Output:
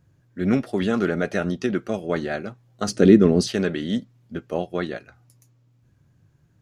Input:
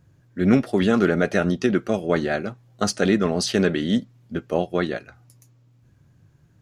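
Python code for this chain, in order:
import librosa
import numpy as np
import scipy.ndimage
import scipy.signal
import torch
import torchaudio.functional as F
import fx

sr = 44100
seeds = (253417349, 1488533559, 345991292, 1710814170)

y = fx.low_shelf_res(x, sr, hz=530.0, db=9.0, q=1.5, at=(2.88, 3.48))
y = F.gain(torch.from_numpy(y), -3.5).numpy()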